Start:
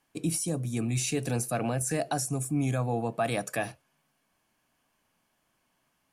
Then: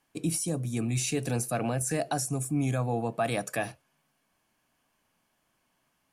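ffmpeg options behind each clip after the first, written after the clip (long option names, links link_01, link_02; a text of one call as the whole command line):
ffmpeg -i in.wav -af anull out.wav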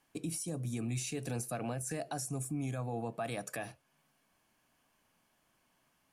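ffmpeg -i in.wav -af "alimiter=level_in=4.5dB:limit=-24dB:level=0:latency=1:release=403,volume=-4.5dB" out.wav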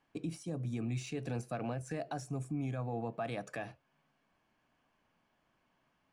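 ffmpeg -i in.wav -af "adynamicsmooth=sensitivity=3.5:basefreq=3900" out.wav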